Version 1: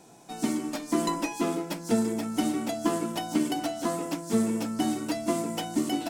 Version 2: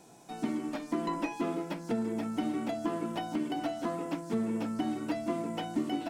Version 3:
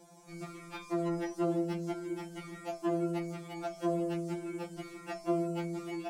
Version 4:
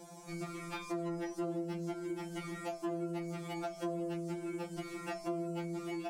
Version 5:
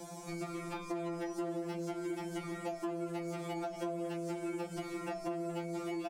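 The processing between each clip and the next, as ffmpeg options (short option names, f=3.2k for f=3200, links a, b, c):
-filter_complex "[0:a]acrossover=split=3400[a][b];[b]acompressor=threshold=-54dB:ratio=4:attack=1:release=60[c];[a][c]amix=inputs=2:normalize=0,alimiter=limit=-18.5dB:level=0:latency=1:release=274,volume=-2.5dB"
-af "afftfilt=real='re*2.83*eq(mod(b,8),0)':imag='im*2.83*eq(mod(b,8),0)':win_size=2048:overlap=0.75"
-af "acompressor=threshold=-44dB:ratio=3,volume=5.5dB"
-filter_complex "[0:a]asplit=2[a][b];[b]adelay=230,highpass=300,lowpass=3.4k,asoftclip=type=hard:threshold=-34.5dB,volume=-11dB[c];[a][c]amix=inputs=2:normalize=0,acrossover=split=380|880[d][e][f];[d]acompressor=threshold=-49dB:ratio=4[g];[e]acompressor=threshold=-45dB:ratio=4[h];[f]acompressor=threshold=-54dB:ratio=4[i];[g][h][i]amix=inputs=3:normalize=0,volume=5.5dB"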